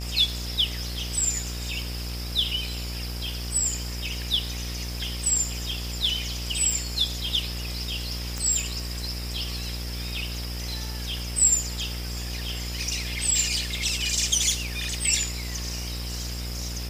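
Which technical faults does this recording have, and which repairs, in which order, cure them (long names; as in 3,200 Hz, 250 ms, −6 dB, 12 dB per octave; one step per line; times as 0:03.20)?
mains buzz 60 Hz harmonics 32 −33 dBFS
0:08.38: click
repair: click removal
hum removal 60 Hz, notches 32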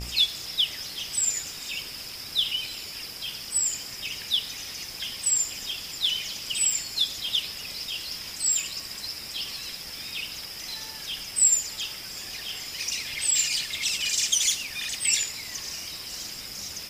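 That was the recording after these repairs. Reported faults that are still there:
none of them is left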